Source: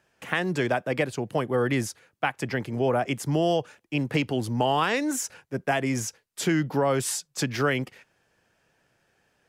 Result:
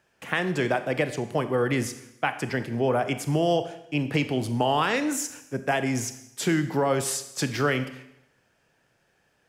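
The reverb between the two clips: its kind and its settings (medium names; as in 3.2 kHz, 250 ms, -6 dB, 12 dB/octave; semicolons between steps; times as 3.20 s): Schroeder reverb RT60 0.83 s, combs from 27 ms, DRR 10 dB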